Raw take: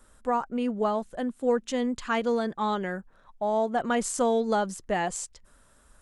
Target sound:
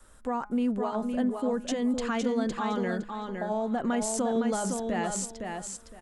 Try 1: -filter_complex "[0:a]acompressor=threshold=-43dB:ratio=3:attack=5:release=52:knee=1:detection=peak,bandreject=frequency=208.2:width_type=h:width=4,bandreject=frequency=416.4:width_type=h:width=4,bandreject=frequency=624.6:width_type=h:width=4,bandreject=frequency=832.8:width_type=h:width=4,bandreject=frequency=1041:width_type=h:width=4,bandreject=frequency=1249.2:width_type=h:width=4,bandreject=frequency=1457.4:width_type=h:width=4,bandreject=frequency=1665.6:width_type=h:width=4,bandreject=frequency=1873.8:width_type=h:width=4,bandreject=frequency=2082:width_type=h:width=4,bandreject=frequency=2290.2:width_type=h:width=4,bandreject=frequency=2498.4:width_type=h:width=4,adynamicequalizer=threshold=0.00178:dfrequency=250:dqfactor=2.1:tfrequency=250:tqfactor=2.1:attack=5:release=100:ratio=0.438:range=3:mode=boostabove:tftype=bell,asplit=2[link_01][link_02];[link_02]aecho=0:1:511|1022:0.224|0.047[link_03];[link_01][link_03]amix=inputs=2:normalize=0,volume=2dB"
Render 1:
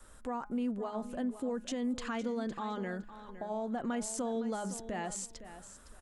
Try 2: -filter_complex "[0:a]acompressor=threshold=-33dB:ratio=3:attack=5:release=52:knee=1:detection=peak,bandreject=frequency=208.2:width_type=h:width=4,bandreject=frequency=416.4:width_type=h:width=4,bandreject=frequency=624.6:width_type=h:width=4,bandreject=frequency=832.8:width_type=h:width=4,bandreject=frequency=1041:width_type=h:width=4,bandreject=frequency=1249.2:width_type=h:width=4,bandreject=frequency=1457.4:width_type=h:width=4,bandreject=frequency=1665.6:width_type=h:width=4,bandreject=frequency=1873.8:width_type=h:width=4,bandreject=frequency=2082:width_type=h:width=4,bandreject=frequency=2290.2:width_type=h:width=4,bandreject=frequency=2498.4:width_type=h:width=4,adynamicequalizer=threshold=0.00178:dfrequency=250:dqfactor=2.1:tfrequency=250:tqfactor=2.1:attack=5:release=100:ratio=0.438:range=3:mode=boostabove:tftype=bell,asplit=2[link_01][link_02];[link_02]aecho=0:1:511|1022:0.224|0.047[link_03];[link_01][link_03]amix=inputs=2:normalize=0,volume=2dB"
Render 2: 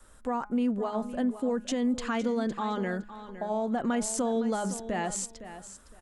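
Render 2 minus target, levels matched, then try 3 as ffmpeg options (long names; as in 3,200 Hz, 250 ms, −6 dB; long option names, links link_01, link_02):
echo-to-direct −8 dB
-filter_complex "[0:a]acompressor=threshold=-33dB:ratio=3:attack=5:release=52:knee=1:detection=peak,bandreject=frequency=208.2:width_type=h:width=4,bandreject=frequency=416.4:width_type=h:width=4,bandreject=frequency=624.6:width_type=h:width=4,bandreject=frequency=832.8:width_type=h:width=4,bandreject=frequency=1041:width_type=h:width=4,bandreject=frequency=1249.2:width_type=h:width=4,bandreject=frequency=1457.4:width_type=h:width=4,bandreject=frequency=1665.6:width_type=h:width=4,bandreject=frequency=1873.8:width_type=h:width=4,bandreject=frequency=2082:width_type=h:width=4,bandreject=frequency=2290.2:width_type=h:width=4,bandreject=frequency=2498.4:width_type=h:width=4,adynamicequalizer=threshold=0.00178:dfrequency=250:dqfactor=2.1:tfrequency=250:tqfactor=2.1:attack=5:release=100:ratio=0.438:range=3:mode=boostabove:tftype=bell,asplit=2[link_01][link_02];[link_02]aecho=0:1:511|1022|1533:0.562|0.118|0.0248[link_03];[link_01][link_03]amix=inputs=2:normalize=0,volume=2dB"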